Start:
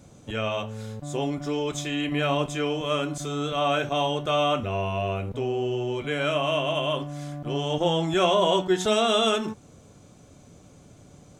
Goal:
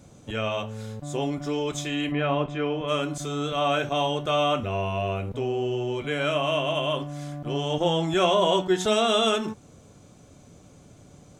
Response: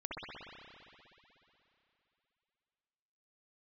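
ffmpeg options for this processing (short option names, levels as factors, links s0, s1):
-filter_complex "[0:a]asplit=3[s0][s1][s2];[s0]afade=t=out:st=2.11:d=0.02[s3];[s1]lowpass=2500,afade=t=in:st=2.11:d=0.02,afade=t=out:st=2.87:d=0.02[s4];[s2]afade=t=in:st=2.87:d=0.02[s5];[s3][s4][s5]amix=inputs=3:normalize=0"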